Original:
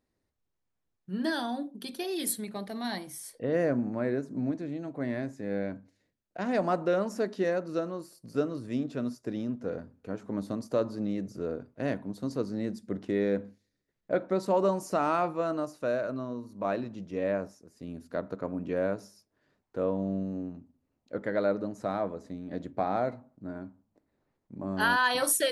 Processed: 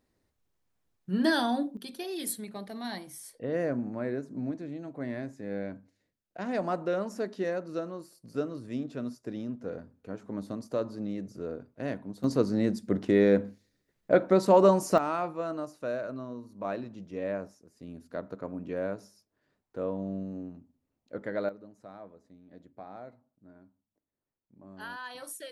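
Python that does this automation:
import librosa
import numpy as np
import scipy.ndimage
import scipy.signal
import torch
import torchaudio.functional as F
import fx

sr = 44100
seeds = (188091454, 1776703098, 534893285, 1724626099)

y = fx.gain(x, sr, db=fx.steps((0.0, 5.0), (1.77, -3.0), (12.24, 6.0), (14.98, -3.5), (21.49, -16.0)))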